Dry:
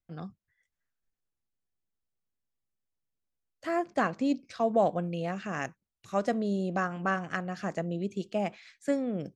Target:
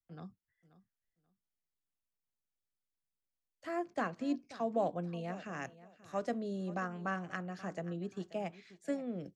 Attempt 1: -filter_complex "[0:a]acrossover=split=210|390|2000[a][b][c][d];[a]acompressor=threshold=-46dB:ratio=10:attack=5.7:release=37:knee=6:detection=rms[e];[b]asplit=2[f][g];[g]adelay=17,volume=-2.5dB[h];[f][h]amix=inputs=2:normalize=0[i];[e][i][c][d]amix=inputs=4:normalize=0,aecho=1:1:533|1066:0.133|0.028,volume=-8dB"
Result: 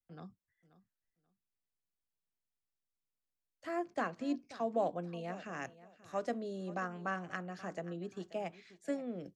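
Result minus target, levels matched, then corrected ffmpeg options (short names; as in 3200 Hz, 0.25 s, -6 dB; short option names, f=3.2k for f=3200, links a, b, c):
compressor: peak gain reduction +13 dB
-filter_complex "[0:a]acrossover=split=210|390|2000[a][b][c][d];[b]asplit=2[e][f];[f]adelay=17,volume=-2.5dB[g];[e][g]amix=inputs=2:normalize=0[h];[a][h][c][d]amix=inputs=4:normalize=0,aecho=1:1:533|1066:0.133|0.028,volume=-8dB"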